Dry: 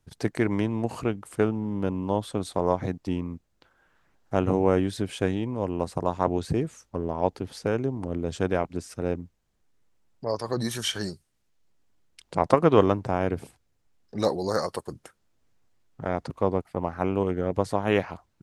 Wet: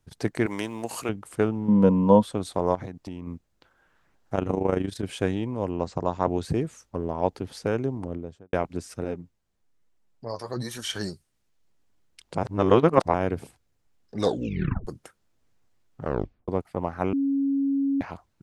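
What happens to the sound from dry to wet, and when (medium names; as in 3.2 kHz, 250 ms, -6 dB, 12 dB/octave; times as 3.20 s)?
0.46–1.09 s: RIAA curve recording
1.68–2.23 s: small resonant body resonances 210/490/960 Hz, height 14 dB
2.75–3.27 s: compression 5:1, threshold -32 dBFS
4.35–5.03 s: AM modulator 26 Hz, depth 55%
5.71–6.28 s: Chebyshev low-pass 7.5 kHz, order 5
7.92–8.53 s: studio fade out
9.04–10.90 s: flange 1.1 Hz, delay 2.6 ms, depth 9.3 ms, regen +39%
12.38–13.14 s: reverse
14.20 s: tape stop 0.67 s
16.01 s: tape stop 0.47 s
17.13–18.01 s: bleep 276 Hz -21 dBFS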